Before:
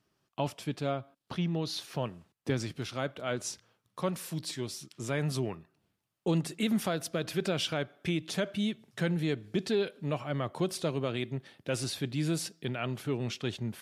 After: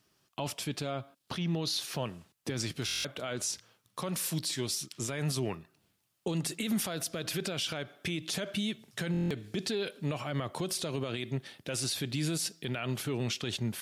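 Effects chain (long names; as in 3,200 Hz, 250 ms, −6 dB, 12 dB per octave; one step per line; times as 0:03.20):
high-shelf EQ 2,500 Hz +8.5 dB
brickwall limiter −25.5 dBFS, peak gain reduction 11 dB
buffer that repeats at 0:02.86/0:09.12, samples 1,024, times 7
level +2 dB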